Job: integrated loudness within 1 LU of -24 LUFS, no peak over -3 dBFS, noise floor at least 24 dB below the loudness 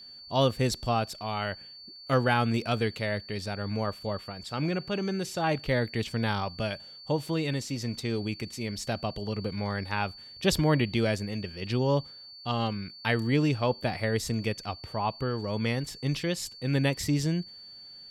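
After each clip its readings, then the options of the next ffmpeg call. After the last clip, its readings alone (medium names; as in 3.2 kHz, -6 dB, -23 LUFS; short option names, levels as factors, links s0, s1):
steady tone 4.5 kHz; tone level -45 dBFS; loudness -30.0 LUFS; peak level -11.0 dBFS; loudness target -24.0 LUFS
-> -af "bandreject=f=4500:w=30"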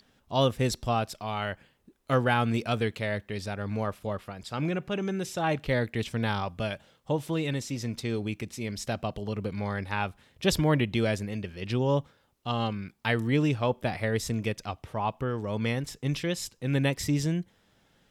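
steady tone not found; loudness -30.0 LUFS; peak level -11.5 dBFS; loudness target -24.0 LUFS
-> -af "volume=2"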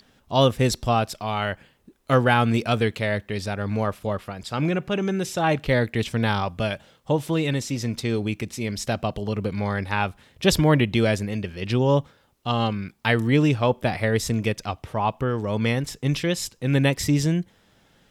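loudness -24.0 LUFS; peak level -5.5 dBFS; noise floor -61 dBFS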